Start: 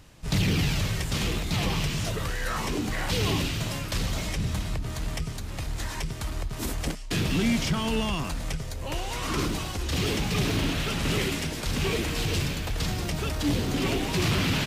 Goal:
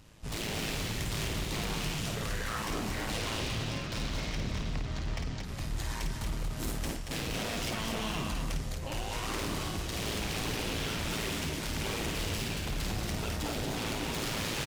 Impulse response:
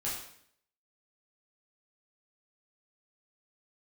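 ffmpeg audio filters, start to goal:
-filter_complex "[0:a]asettb=1/sr,asplit=3[s0][s1][s2];[s0]atrim=end=3.104[s3];[s1]atrim=start=3.1:end=5.44,asetpts=PTS-STARTPTS,afade=t=in:d=0.004:c=qsin,afade=t=out:st=2.336:d=0.004:c=qsin,lowpass=f=6000:w=0.5412,lowpass=f=6000:w=1.3066[s4];[s2]atrim=start=5.436[s5];[s3][s4]acrossfade=d=0.004:c1=hsin:c2=qsin[s6];[s6][s5]acrossfade=d=0.004:c1=qsin:c2=hsin,aeval=exprs='0.0501*(abs(mod(val(0)/0.0501+3,4)-2)-1)':c=same,tremolo=f=110:d=0.621,aecho=1:1:52.48|230.3:0.562|0.562,volume=0.75"

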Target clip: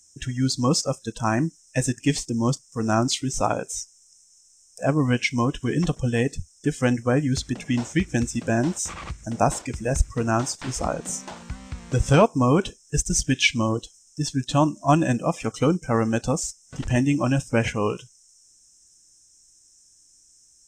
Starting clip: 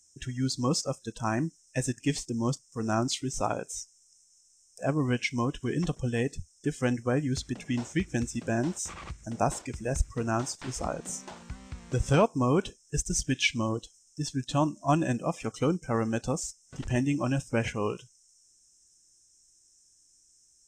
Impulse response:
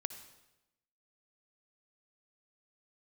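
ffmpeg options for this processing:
-af "bandreject=f=380:w=12,volume=2.11"

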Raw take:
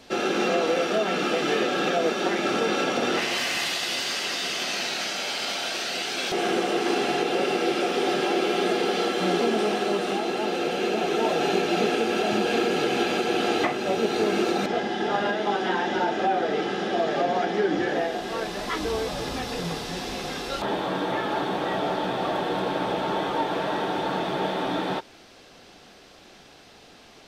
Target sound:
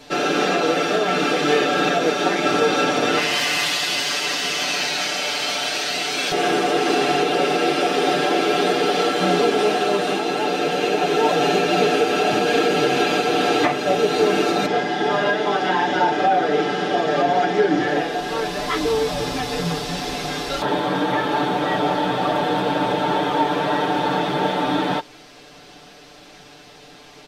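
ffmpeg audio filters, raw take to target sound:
-af "aecho=1:1:6.8:0.81,volume=1.5"

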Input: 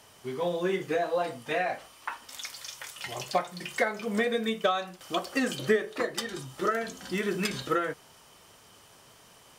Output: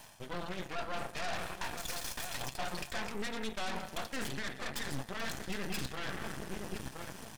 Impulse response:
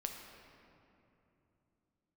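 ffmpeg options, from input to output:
-filter_complex "[0:a]asubboost=boost=3.5:cutoff=160,asplit=2[s0][s1];[1:a]atrim=start_sample=2205,lowshelf=f=93:g=-8[s2];[s1][s2]afir=irnorm=-1:irlink=0,volume=0.841[s3];[s0][s3]amix=inputs=2:normalize=0,atempo=1.3,asplit=2[s4][s5];[s5]adelay=1018,lowpass=f=950:p=1,volume=0.188,asplit=2[s6][s7];[s7]adelay=1018,lowpass=f=950:p=1,volume=0.46,asplit=2[s8][s9];[s9]adelay=1018,lowpass=f=950:p=1,volume=0.46,asplit=2[s10][s11];[s11]adelay=1018,lowpass=f=950:p=1,volume=0.46[s12];[s4][s6][s8][s10][s12]amix=inputs=5:normalize=0,asoftclip=type=tanh:threshold=0.15,areverse,acompressor=threshold=0.0158:ratio=6,areverse,aecho=1:1:1.2:0.68,aeval=exprs='0.0668*(cos(1*acos(clip(val(0)/0.0668,-1,1)))-cos(1*PI/2))+0.0237*(cos(8*acos(clip(val(0)/0.0668,-1,1)))-cos(8*PI/2))':c=same,volume=0.531"

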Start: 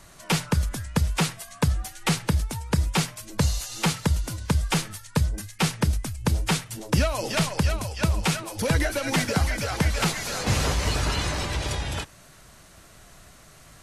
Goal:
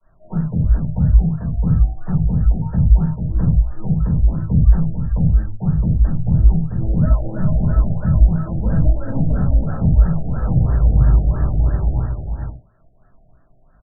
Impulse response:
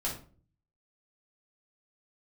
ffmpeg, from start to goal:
-filter_complex "[0:a]agate=range=0.0224:threshold=0.0112:ratio=3:detection=peak,acrossover=split=210[s0][s1];[s1]acompressor=threshold=0.0126:ratio=4[s2];[s0][s2]amix=inputs=2:normalize=0,acrossover=split=340|820|3100[s3][s4][s5][s6];[s5]aeval=exprs='(mod(63.1*val(0)+1,2)-1)/63.1':c=same[s7];[s3][s4][s7][s6]amix=inputs=4:normalize=0,aecho=1:1:443:0.531[s8];[1:a]atrim=start_sample=2205,atrim=end_sample=6174[s9];[s8][s9]afir=irnorm=-1:irlink=0,afftfilt=real='re*lt(b*sr/1024,780*pow(1900/780,0.5+0.5*sin(2*PI*3*pts/sr)))':imag='im*lt(b*sr/1024,780*pow(1900/780,0.5+0.5*sin(2*PI*3*pts/sr)))':win_size=1024:overlap=0.75,volume=1.26"

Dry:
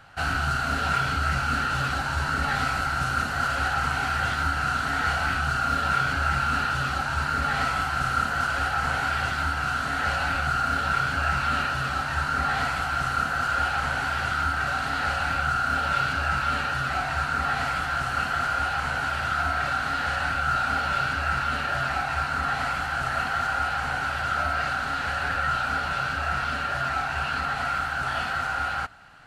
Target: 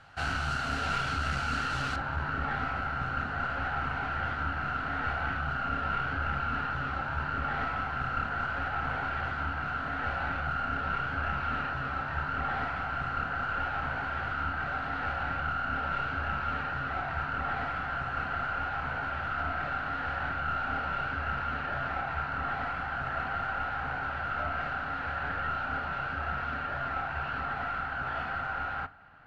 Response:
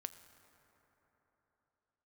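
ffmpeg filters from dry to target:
-filter_complex "[0:a]aeval=exprs='clip(val(0),-1,0.0447)':c=same,asetnsamples=n=441:p=0,asendcmd='1.96 lowpass f 2000',lowpass=7700[s0];[1:a]atrim=start_sample=2205,atrim=end_sample=3087[s1];[s0][s1]afir=irnorm=-1:irlink=0"

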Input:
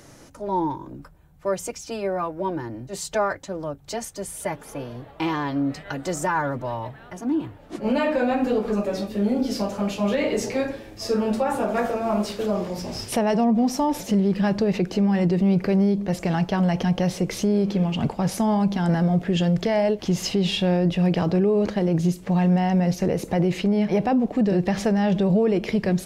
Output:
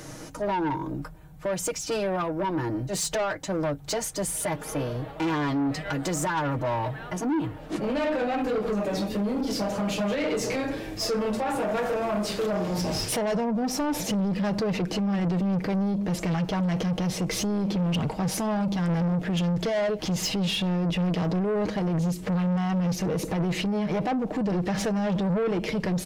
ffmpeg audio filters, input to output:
-af "alimiter=limit=0.0891:level=0:latency=1:release=209,aecho=1:1:6.4:0.45,asoftclip=type=tanh:threshold=0.0376,volume=2"

